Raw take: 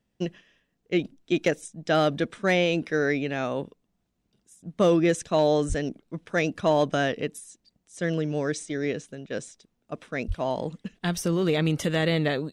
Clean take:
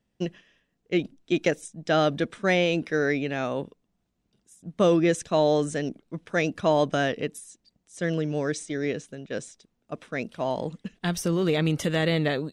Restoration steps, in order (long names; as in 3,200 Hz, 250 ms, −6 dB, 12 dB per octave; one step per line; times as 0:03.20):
clipped peaks rebuilt −12.5 dBFS
high-pass at the plosives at 0:05.68/0:10.27